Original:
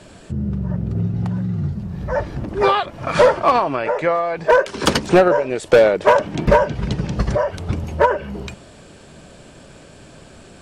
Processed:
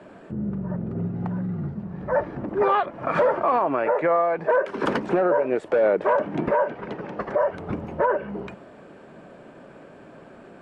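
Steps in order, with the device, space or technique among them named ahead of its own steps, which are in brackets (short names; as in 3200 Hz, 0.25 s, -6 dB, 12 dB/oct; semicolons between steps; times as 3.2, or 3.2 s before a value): DJ mixer with the lows and highs turned down (three-band isolator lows -18 dB, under 170 Hz, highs -22 dB, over 2100 Hz; limiter -12 dBFS, peak gain reduction 11 dB); 6.48–7.41 tone controls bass -14 dB, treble -5 dB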